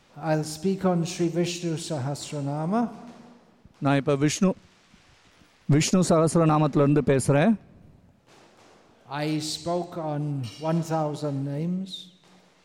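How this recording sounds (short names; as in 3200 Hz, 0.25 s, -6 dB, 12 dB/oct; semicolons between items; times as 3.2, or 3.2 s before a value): noise floor -59 dBFS; spectral tilt -6.0 dB/oct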